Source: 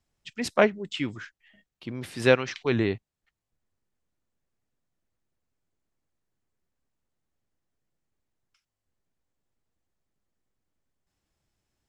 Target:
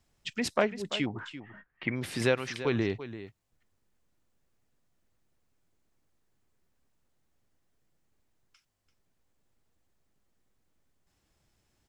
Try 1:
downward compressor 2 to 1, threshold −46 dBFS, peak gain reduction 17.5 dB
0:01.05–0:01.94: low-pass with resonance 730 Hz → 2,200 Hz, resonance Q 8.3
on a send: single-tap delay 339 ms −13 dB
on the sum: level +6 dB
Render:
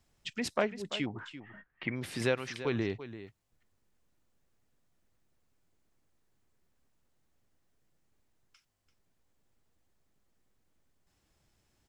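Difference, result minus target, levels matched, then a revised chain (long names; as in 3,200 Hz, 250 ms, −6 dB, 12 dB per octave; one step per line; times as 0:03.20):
downward compressor: peak gain reduction +3.5 dB
downward compressor 2 to 1, threshold −39 dBFS, peak gain reduction 14 dB
0:01.05–0:01.94: low-pass with resonance 730 Hz → 2,200 Hz, resonance Q 8.3
on a send: single-tap delay 339 ms −13 dB
on the sum: level +6 dB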